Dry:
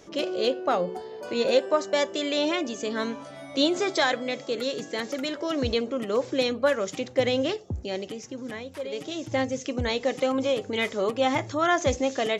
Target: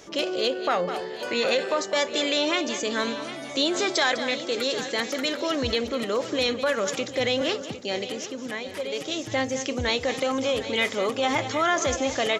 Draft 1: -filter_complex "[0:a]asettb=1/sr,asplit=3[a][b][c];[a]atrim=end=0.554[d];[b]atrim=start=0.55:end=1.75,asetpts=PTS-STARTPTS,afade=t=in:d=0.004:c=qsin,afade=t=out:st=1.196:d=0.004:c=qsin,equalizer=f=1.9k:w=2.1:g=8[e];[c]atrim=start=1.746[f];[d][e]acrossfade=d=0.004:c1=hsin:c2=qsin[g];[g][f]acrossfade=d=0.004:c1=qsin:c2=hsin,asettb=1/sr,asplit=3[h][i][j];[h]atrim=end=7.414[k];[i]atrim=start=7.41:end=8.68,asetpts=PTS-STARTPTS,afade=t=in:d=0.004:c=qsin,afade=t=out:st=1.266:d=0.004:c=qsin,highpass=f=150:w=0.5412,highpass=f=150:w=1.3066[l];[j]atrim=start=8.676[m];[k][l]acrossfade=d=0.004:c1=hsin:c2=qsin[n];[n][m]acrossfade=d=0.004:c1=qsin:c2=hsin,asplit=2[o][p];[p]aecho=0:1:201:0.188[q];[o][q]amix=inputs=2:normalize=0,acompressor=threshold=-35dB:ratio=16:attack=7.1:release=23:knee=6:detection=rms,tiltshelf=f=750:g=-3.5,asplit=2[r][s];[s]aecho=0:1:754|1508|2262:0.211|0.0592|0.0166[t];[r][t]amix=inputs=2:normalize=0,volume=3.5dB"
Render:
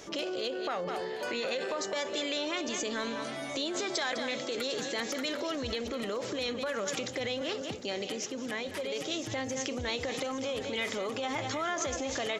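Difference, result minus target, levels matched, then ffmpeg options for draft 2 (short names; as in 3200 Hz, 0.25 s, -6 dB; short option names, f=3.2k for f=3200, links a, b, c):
compressor: peak gain reduction +11 dB
-filter_complex "[0:a]asettb=1/sr,asplit=3[a][b][c];[a]atrim=end=0.554[d];[b]atrim=start=0.55:end=1.75,asetpts=PTS-STARTPTS,afade=t=in:d=0.004:c=qsin,afade=t=out:st=1.196:d=0.004:c=qsin,equalizer=f=1.9k:w=2.1:g=8[e];[c]atrim=start=1.746[f];[d][e]acrossfade=d=0.004:c1=hsin:c2=qsin[g];[g][f]acrossfade=d=0.004:c1=qsin:c2=hsin,asettb=1/sr,asplit=3[h][i][j];[h]atrim=end=7.414[k];[i]atrim=start=7.41:end=8.68,asetpts=PTS-STARTPTS,afade=t=in:d=0.004:c=qsin,afade=t=out:st=1.266:d=0.004:c=qsin,highpass=f=150:w=0.5412,highpass=f=150:w=1.3066[l];[j]atrim=start=8.676[m];[k][l]acrossfade=d=0.004:c1=hsin:c2=qsin[n];[n][m]acrossfade=d=0.004:c1=qsin:c2=hsin,asplit=2[o][p];[p]aecho=0:1:201:0.188[q];[o][q]amix=inputs=2:normalize=0,acompressor=threshold=-23.5dB:ratio=16:attack=7.1:release=23:knee=6:detection=rms,tiltshelf=f=750:g=-3.5,asplit=2[r][s];[s]aecho=0:1:754|1508|2262:0.211|0.0592|0.0166[t];[r][t]amix=inputs=2:normalize=0,volume=3.5dB"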